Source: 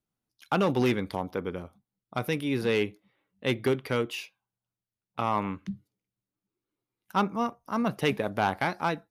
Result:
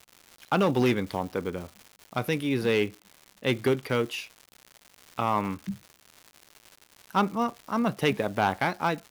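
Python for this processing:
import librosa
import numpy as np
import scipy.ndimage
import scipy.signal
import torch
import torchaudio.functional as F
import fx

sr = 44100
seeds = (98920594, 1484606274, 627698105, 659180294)

y = fx.block_float(x, sr, bits=7)
y = fx.dmg_crackle(y, sr, seeds[0], per_s=240.0, level_db=-38.0)
y = F.gain(torch.from_numpy(y), 1.5).numpy()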